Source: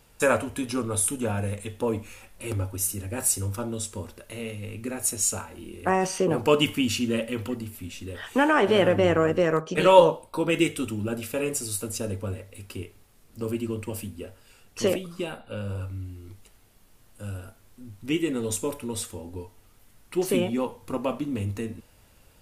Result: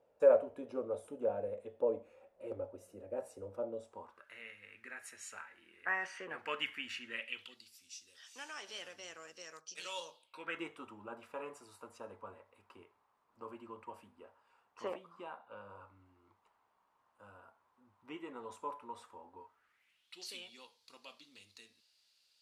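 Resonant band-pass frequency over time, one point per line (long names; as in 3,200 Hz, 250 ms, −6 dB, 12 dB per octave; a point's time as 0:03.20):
resonant band-pass, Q 4.3
0:03.81 560 Hz
0:04.37 1,800 Hz
0:07.08 1,800 Hz
0:07.78 5,500 Hz
0:10.09 5,500 Hz
0:10.64 1,000 Hz
0:19.40 1,000 Hz
0:20.22 4,400 Hz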